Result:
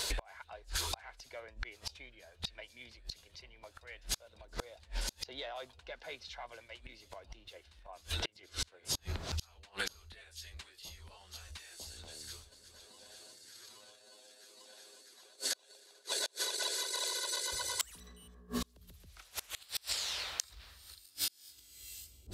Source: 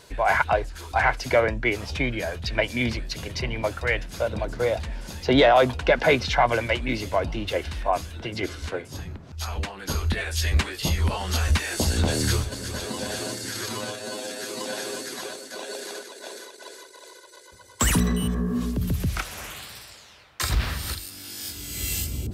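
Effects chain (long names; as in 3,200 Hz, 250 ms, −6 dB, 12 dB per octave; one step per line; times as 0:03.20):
graphic EQ with 10 bands 125 Hz −11 dB, 250 Hz −8 dB, 4,000 Hz +8 dB, 8,000 Hz +4 dB
gate with flip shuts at −23 dBFS, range −37 dB
downward compressor 8 to 1, threshold −44 dBFS, peak gain reduction 14.5 dB
high-shelf EQ 9,900 Hz +7.5 dB
one half of a high-frequency compander decoder only
level +10 dB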